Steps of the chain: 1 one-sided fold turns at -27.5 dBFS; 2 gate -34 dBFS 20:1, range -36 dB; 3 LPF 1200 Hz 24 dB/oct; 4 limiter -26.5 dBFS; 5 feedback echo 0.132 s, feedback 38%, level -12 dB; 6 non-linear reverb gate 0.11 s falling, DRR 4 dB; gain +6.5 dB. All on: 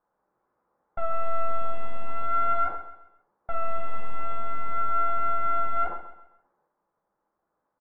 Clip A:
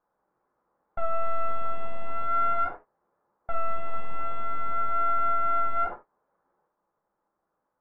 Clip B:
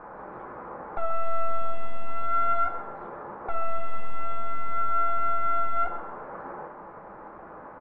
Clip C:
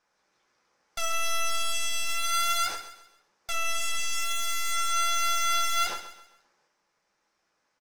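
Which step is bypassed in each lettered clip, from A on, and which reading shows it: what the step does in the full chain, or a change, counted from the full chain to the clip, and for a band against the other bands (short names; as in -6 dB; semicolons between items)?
5, momentary loudness spread change -2 LU; 2, momentary loudness spread change +4 LU; 3, crest factor change +6.5 dB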